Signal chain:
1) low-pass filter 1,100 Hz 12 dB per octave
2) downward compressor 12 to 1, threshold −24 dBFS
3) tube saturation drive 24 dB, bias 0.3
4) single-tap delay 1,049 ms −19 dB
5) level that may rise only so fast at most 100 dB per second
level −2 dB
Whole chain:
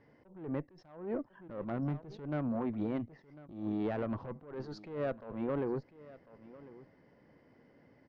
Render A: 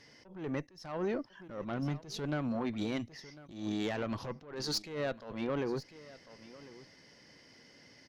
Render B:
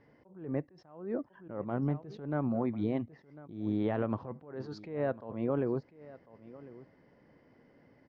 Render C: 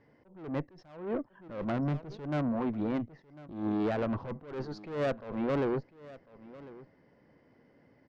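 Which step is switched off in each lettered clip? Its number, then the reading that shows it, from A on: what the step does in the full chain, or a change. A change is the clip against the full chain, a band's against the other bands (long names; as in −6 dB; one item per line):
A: 1, 4 kHz band +18.5 dB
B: 3, change in crest factor +5.5 dB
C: 2, average gain reduction 6.0 dB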